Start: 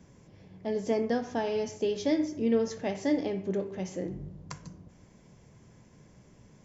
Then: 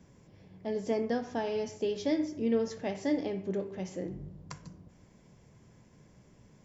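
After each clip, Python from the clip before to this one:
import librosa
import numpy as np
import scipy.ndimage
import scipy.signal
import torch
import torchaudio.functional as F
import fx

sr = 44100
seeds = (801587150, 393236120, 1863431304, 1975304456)

y = fx.notch(x, sr, hz=6300.0, q=20.0)
y = F.gain(torch.from_numpy(y), -2.5).numpy()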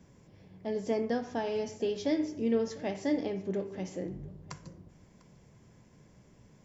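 y = x + 10.0 ** (-21.5 / 20.0) * np.pad(x, (int(698 * sr / 1000.0), 0))[:len(x)]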